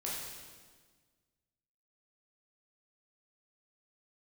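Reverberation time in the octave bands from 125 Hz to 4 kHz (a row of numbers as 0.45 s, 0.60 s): 1.9 s, 1.9 s, 1.6 s, 1.4 s, 1.4 s, 1.4 s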